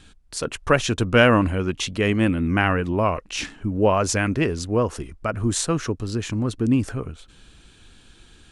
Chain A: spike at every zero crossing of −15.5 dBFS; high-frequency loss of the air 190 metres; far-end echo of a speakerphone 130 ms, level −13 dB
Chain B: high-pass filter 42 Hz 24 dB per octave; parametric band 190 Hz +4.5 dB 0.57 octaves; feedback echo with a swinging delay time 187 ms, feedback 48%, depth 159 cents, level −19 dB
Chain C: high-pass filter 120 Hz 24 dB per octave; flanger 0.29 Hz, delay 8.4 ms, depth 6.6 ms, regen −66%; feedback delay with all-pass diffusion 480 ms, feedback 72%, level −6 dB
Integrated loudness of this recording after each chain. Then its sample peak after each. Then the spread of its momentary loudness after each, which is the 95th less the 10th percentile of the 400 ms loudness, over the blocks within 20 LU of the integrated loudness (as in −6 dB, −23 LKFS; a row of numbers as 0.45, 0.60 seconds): −23.0, −21.5, −25.5 LKFS; −4.5, −1.5, −4.0 dBFS; 15, 12, 11 LU